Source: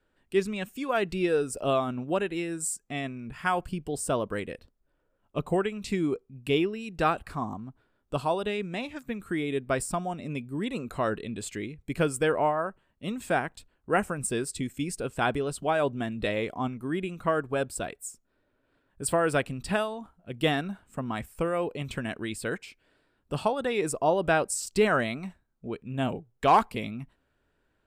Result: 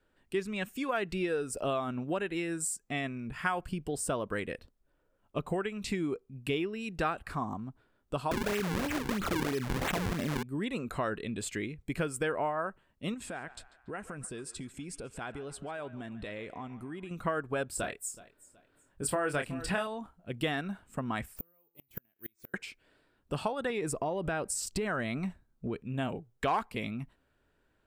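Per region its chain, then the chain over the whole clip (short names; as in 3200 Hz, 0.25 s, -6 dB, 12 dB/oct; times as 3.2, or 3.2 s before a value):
8.31–10.43 decimation with a swept rate 40×, swing 160% 3 Hz + fast leveller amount 70%
13.14–17.11 LPF 11000 Hz 24 dB/oct + compressor 5:1, threshold -39 dBFS + narrowing echo 0.142 s, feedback 64%, band-pass 1400 Hz, level -12.5 dB
17.7–19.87 doubler 27 ms -7 dB + feedback echo 0.373 s, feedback 31%, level -20.5 dB
21.36–22.54 resonator 170 Hz, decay 0.68 s + flipped gate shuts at -30 dBFS, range -39 dB + careless resampling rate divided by 3×, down none, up zero stuff
23.7–25.82 low shelf 350 Hz +6.5 dB + compressor 3:1, threshold -27 dBFS
whole clip: compressor 3:1, threshold -31 dBFS; dynamic EQ 1700 Hz, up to +4 dB, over -49 dBFS, Q 1.2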